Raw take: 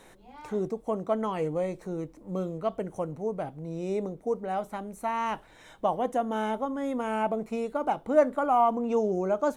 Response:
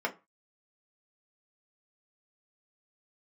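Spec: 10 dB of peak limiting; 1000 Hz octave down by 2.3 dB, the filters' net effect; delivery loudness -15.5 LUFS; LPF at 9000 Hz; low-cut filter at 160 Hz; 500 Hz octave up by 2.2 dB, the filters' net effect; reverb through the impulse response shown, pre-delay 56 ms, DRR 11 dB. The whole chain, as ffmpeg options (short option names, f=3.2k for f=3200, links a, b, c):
-filter_complex "[0:a]highpass=160,lowpass=9k,equalizer=f=500:t=o:g=4.5,equalizer=f=1k:t=o:g=-5.5,alimiter=limit=-19.5dB:level=0:latency=1,asplit=2[a][b];[1:a]atrim=start_sample=2205,adelay=56[c];[b][c]afir=irnorm=-1:irlink=0,volume=-18.5dB[d];[a][d]amix=inputs=2:normalize=0,volume=15dB"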